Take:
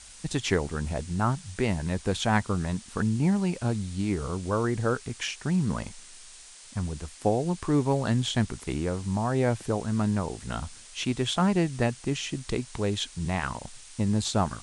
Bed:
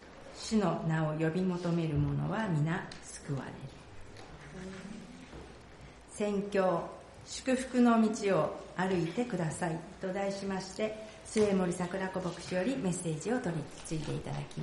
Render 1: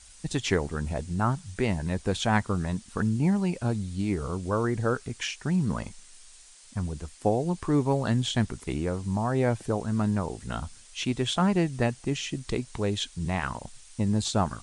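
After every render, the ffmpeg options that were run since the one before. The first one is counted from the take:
ffmpeg -i in.wav -af "afftdn=noise_reduction=6:noise_floor=-48" out.wav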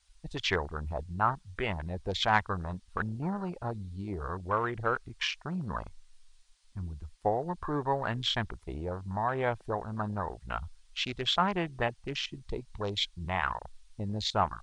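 ffmpeg -i in.wav -af "equalizer=frequency=125:width_type=o:width=1:gain=-8,equalizer=frequency=250:width_type=o:width=1:gain=-11,equalizer=frequency=500:width_type=o:width=1:gain=-3,equalizer=frequency=1000:width_type=o:width=1:gain=4,equalizer=frequency=4000:width_type=o:width=1:gain=4,equalizer=frequency=8000:width_type=o:width=1:gain=-7,afwtdn=0.0158" out.wav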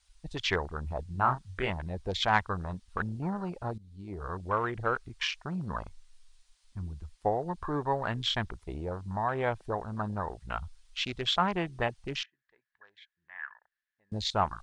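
ffmpeg -i in.wav -filter_complex "[0:a]asettb=1/sr,asplit=3[link_01][link_02][link_03];[link_01]atrim=end=1.114[link_04];[link_02]atrim=start=1.11:end=1.7,asetpts=PTS-STARTPTS,afade=type=in:duration=0.004:curve=qsin,afade=type=out:start_time=0.586:duration=0.004:curve=qsin,asplit=2[link_05][link_06];[link_06]adelay=31,volume=-5.5dB[link_07];[link_05][link_07]amix=inputs=2:normalize=0,atrim=end_sample=26019[link_08];[link_03]atrim=start=1.696[link_09];[link_04][link_08]acrossfade=duration=0.004:curve1=hsin:curve2=qsin[link_10];[link_10][link_09]acrossfade=duration=0.004:curve1=qsin:curve2=hsin,asettb=1/sr,asplit=3[link_11][link_12][link_13];[link_11]atrim=end=12.234[link_14];[link_12]atrim=start=12.23:end=14.12,asetpts=PTS-STARTPTS,afade=type=in:duration=0.004:curve=qsin,afade=type=out:start_time=1.886:duration=0.004:curve=qsin,bandpass=frequency=1700:width_type=q:width=13[link_15];[link_13]atrim=start=14.116[link_16];[link_14][link_15]acrossfade=duration=0.004:curve1=hsin:curve2=qsin[link_17];[link_17][link_16]acrossfade=duration=0.004:curve1=qsin:curve2=hsin,asplit=2[link_18][link_19];[link_18]atrim=end=3.78,asetpts=PTS-STARTPTS,afade=type=out:start_time=3.776:duration=0.004:curve=hsin:silence=0.133352[link_20];[link_19]atrim=start=3.78,asetpts=PTS-STARTPTS,afade=type=in:duration=0.58:silence=0.133352[link_21];[link_20][link_21]concat=n=2:v=0:a=1" out.wav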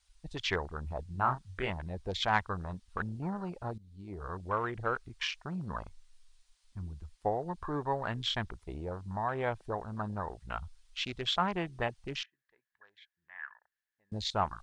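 ffmpeg -i in.wav -af "volume=-3dB" out.wav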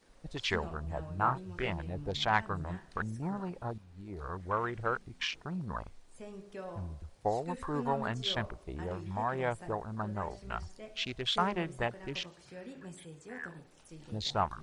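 ffmpeg -i in.wav -i bed.wav -filter_complex "[1:a]volume=-14.5dB[link_01];[0:a][link_01]amix=inputs=2:normalize=0" out.wav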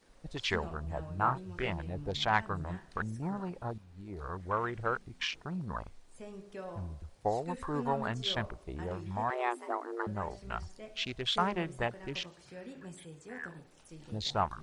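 ffmpeg -i in.wav -filter_complex "[0:a]asettb=1/sr,asplit=3[link_01][link_02][link_03];[link_01]atrim=end=9.304[link_04];[link_02]atrim=start=9.3:end=10.07,asetpts=PTS-STARTPTS,afade=type=in:duration=0.004:curve=qsin,afade=type=out:start_time=0.766:duration=0.004:curve=qsin,afreqshift=240[link_05];[link_03]atrim=start=10.066[link_06];[link_04][link_05]acrossfade=duration=0.004:curve1=hsin:curve2=qsin[link_07];[link_07][link_06]acrossfade=duration=0.004:curve1=qsin:curve2=hsin" out.wav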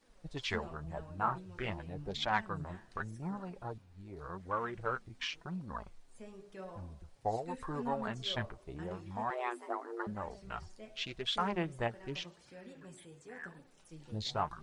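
ffmpeg -i in.wav -af "flanger=delay=3.3:depth=6:regen=35:speed=0.88:shape=triangular" out.wav

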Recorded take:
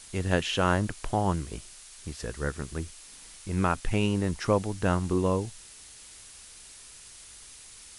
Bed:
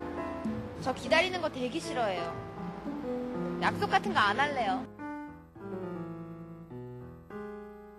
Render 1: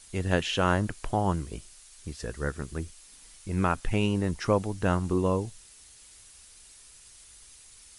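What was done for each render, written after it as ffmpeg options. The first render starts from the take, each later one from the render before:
ffmpeg -i in.wav -af "afftdn=noise_reduction=6:noise_floor=-49" out.wav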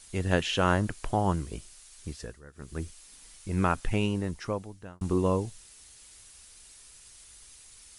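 ffmpeg -i in.wav -filter_complex "[0:a]asplit=4[link_01][link_02][link_03][link_04];[link_01]atrim=end=2.42,asetpts=PTS-STARTPTS,afade=type=out:start_time=2.11:duration=0.31:silence=0.105925[link_05];[link_02]atrim=start=2.42:end=2.52,asetpts=PTS-STARTPTS,volume=-19.5dB[link_06];[link_03]atrim=start=2.52:end=5.01,asetpts=PTS-STARTPTS,afade=type=in:duration=0.31:silence=0.105925,afade=type=out:start_time=1.31:duration=1.18[link_07];[link_04]atrim=start=5.01,asetpts=PTS-STARTPTS,afade=type=in:duration=0.004:curve=hsin[link_08];[link_05][link_06][link_07][link_08]concat=n=4:v=0:a=1" out.wav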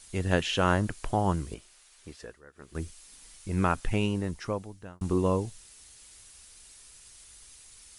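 ffmpeg -i in.wav -filter_complex "[0:a]asettb=1/sr,asplit=3[link_01][link_02][link_03];[link_01]atrim=end=1.544[link_04];[link_02]atrim=start=1.54:end=2.75,asetpts=PTS-STARTPTS,afade=type=in:duration=0.004:curve=qsin,afade=type=out:start_time=1.206:duration=0.004:curve=qsin,bass=frequency=250:gain=-11,treble=frequency=4000:gain=-7[link_05];[link_03]atrim=start=2.746[link_06];[link_04][link_05]acrossfade=duration=0.004:curve1=hsin:curve2=qsin[link_07];[link_07][link_06]acrossfade=duration=0.004:curve1=qsin:curve2=hsin" out.wav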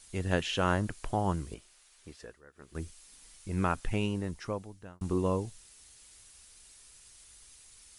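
ffmpeg -i in.wav -af "volume=-3.5dB" out.wav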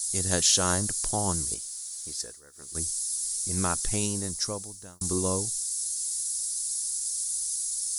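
ffmpeg -i in.wav -af "aexciter=amount=14.4:drive=5.6:freq=4200" out.wav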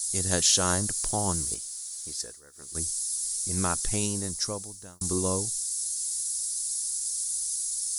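ffmpeg -i in.wav -filter_complex "[0:a]asettb=1/sr,asplit=3[link_01][link_02][link_03];[link_01]atrim=end=0.964[link_04];[link_02]atrim=start=0.96:end=1.56,asetpts=PTS-STARTPTS,afade=type=in:duration=0.004:curve=qsin,afade=type=out:start_time=0.596:duration=0.004:curve=qsin,aeval=exprs='val(0)*gte(abs(val(0)),0.00473)':channel_layout=same[link_05];[link_03]atrim=start=1.556[link_06];[link_04][link_05]acrossfade=duration=0.004:curve1=hsin:curve2=qsin[link_07];[link_07][link_06]acrossfade=duration=0.004:curve1=qsin:curve2=hsin" out.wav

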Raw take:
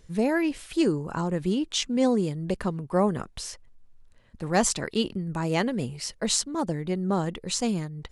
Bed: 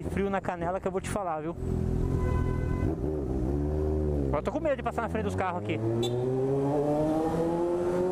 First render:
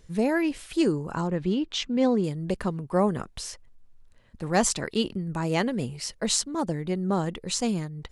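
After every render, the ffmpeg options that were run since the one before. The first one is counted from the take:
ffmpeg -i in.wav -filter_complex "[0:a]asettb=1/sr,asplit=3[link_01][link_02][link_03];[link_01]atrim=end=1.274[link_04];[link_02]atrim=start=1.27:end=2.24,asetpts=PTS-STARTPTS,afade=type=in:duration=0.004:curve=qsin,afade=type=out:start_time=0.966:duration=0.004:curve=qsin,lowpass=4500[link_05];[link_03]atrim=start=2.236[link_06];[link_04][link_05]acrossfade=duration=0.004:curve1=hsin:curve2=qsin[link_07];[link_07][link_06]acrossfade=duration=0.004:curve1=qsin:curve2=hsin" out.wav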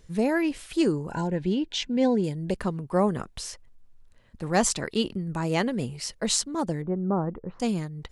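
ffmpeg -i in.wav -filter_complex "[0:a]asettb=1/sr,asplit=3[link_01][link_02][link_03];[link_01]atrim=end=1.094[link_04];[link_02]atrim=start=1.09:end=2.51,asetpts=PTS-STARTPTS,afade=type=in:duration=0.004:curve=qsin,afade=type=out:start_time=1.416:duration=0.004:curve=qsin,asuperstop=centerf=1200:order=20:qfactor=3.5[link_05];[link_03]atrim=start=2.506[link_06];[link_04][link_05]acrossfade=duration=0.004:curve1=hsin:curve2=qsin[link_07];[link_07][link_06]acrossfade=duration=0.004:curve1=qsin:curve2=hsin,asettb=1/sr,asplit=3[link_08][link_09][link_10];[link_08]atrim=end=6.824[link_11];[link_09]atrim=start=6.82:end=7.6,asetpts=PTS-STARTPTS,afade=type=in:duration=0.004:curve=qsin,afade=type=out:start_time=0.776:duration=0.004:curve=qsin,lowpass=frequency=1300:width=0.5412,lowpass=frequency=1300:width=1.3066[link_12];[link_10]atrim=start=7.596[link_13];[link_11][link_12]acrossfade=duration=0.004:curve1=hsin:curve2=qsin[link_14];[link_14][link_13]acrossfade=duration=0.004:curve1=qsin:curve2=hsin" out.wav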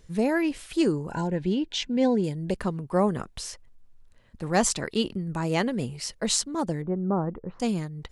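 ffmpeg -i in.wav -af anull out.wav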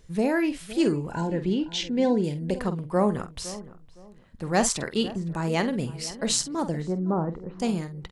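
ffmpeg -i in.wav -filter_complex "[0:a]asplit=2[link_01][link_02];[link_02]adelay=48,volume=-11dB[link_03];[link_01][link_03]amix=inputs=2:normalize=0,asplit=2[link_04][link_05];[link_05]adelay=512,lowpass=frequency=1200:poles=1,volume=-15.5dB,asplit=2[link_06][link_07];[link_07]adelay=512,lowpass=frequency=1200:poles=1,volume=0.28,asplit=2[link_08][link_09];[link_09]adelay=512,lowpass=frequency=1200:poles=1,volume=0.28[link_10];[link_04][link_06][link_08][link_10]amix=inputs=4:normalize=0" out.wav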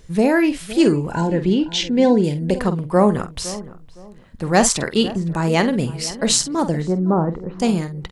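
ffmpeg -i in.wav -af "volume=8dB,alimiter=limit=-1dB:level=0:latency=1" out.wav

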